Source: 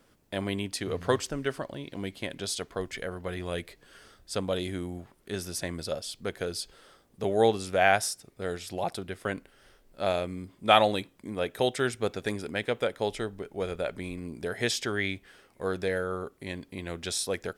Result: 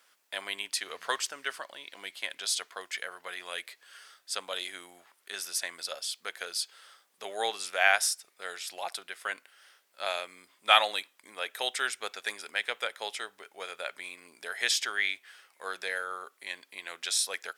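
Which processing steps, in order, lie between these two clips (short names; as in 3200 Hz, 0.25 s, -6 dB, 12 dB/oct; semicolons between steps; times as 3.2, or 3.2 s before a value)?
HPF 1200 Hz 12 dB/oct; gain +3.5 dB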